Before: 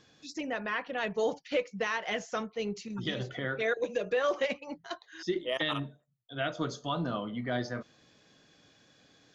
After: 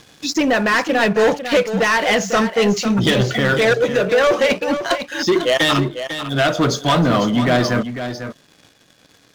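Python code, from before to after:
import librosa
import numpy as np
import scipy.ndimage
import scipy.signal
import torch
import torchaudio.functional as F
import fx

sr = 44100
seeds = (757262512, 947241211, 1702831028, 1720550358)

p1 = fx.rider(x, sr, range_db=4, speed_s=0.5)
p2 = x + F.gain(torch.from_numpy(p1), 3.0).numpy()
p3 = fx.leveller(p2, sr, passes=3)
p4 = p3 + 10.0 ** (-10.0 / 20.0) * np.pad(p3, (int(498 * sr / 1000.0), 0))[:len(p3)]
y = F.gain(torch.from_numpy(p4), 1.5).numpy()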